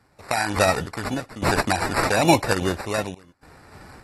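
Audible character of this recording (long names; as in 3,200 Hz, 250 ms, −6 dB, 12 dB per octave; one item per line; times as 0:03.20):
aliases and images of a low sample rate 3,200 Hz, jitter 0%
sample-and-hold tremolo 3.5 Hz, depth 95%
AAC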